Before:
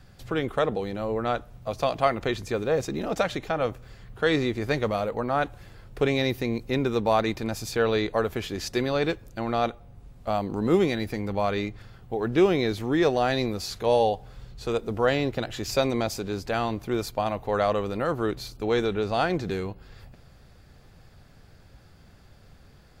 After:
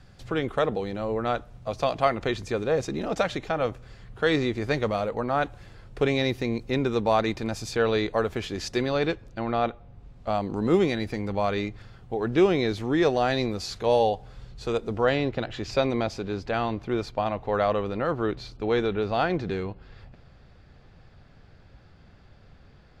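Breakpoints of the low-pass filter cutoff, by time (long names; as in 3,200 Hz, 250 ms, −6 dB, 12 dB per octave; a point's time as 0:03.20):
0:08.76 8,400 Hz
0:09.64 3,200 Hz
0:10.54 8,100 Hz
0:14.82 8,100 Hz
0:15.28 4,100 Hz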